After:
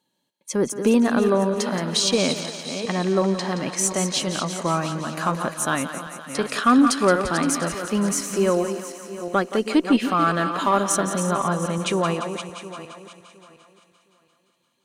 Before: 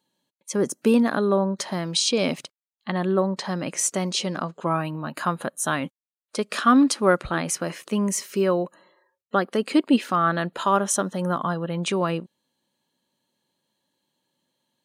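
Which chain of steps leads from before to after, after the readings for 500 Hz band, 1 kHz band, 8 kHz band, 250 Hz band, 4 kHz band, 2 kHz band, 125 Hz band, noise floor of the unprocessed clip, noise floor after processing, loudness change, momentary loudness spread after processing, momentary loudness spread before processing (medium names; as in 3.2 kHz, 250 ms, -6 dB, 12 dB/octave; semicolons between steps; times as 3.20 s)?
+2.0 dB, +2.0 dB, +2.5 dB, +1.5 dB, +2.5 dB, +2.0 dB, +1.5 dB, under -85 dBFS, -69 dBFS, +1.5 dB, 11 LU, 9 LU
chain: backward echo that repeats 357 ms, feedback 46%, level -9 dB; Chebyshev shaper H 5 -27 dB, 6 -36 dB, 7 -43 dB, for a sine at -6 dBFS; thinning echo 173 ms, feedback 73%, high-pass 420 Hz, level -11 dB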